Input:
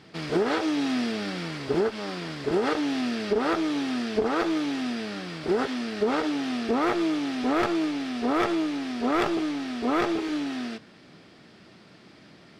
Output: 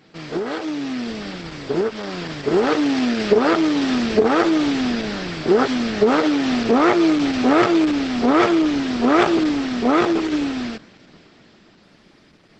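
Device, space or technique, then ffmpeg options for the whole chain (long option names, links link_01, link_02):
video call: -filter_complex "[0:a]asettb=1/sr,asplit=3[link_01][link_02][link_03];[link_01]atrim=end=0.634[link_04];[link_02]atrim=start=0.63:end=1.13,asetpts=PTS-STARTPTS,afade=type=in:duration=0.004:curve=qsin,afade=type=out:start_time=0.496:duration=0.004:curve=qsin,adynamicequalizer=threshold=0.00251:dfrequency=140:dqfactor=3.8:tfrequency=140:tqfactor=3.8:attack=5:release=100:ratio=0.375:range=2.5:mode=boostabove:tftype=bell[link_05];[link_03]atrim=start=1.126[link_06];[link_04][link_05]acrossfade=duration=0.004:curve1=hsin:curve2=qsin[link_07];[link_07][link_06]acrossfade=duration=0.004:curve1=qsin:curve2=hsin,highpass=100,dynaudnorm=framelen=250:gausssize=17:maxgain=11.5dB" -ar 48000 -c:a libopus -b:a 12k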